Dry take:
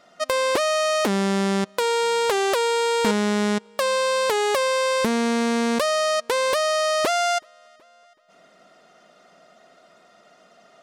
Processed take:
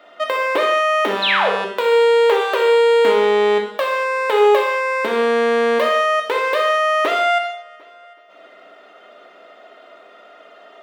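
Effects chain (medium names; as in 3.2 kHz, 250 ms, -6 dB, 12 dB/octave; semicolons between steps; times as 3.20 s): high-pass 290 Hz 24 dB/octave; high-order bell 7.6 kHz -15.5 dB; in parallel at +2 dB: compression, threshold -35 dBFS, peak gain reduction 17 dB; on the sum: painted sound fall, 1.22–1.50 s, 410–4300 Hz -19 dBFS; on a send: flutter echo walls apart 10.3 m, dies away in 0.27 s; on the sum: gated-style reverb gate 260 ms falling, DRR 0.5 dB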